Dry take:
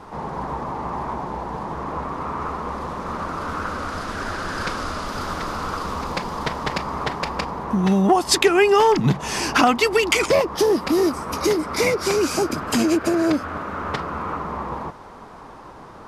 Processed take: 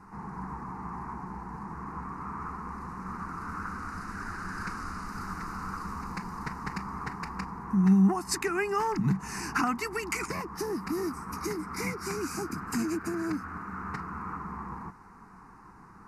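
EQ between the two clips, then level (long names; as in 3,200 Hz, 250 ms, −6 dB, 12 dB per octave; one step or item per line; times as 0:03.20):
parametric band 190 Hz +9 dB 0.21 octaves
phaser with its sweep stopped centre 1,400 Hz, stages 4
−8.5 dB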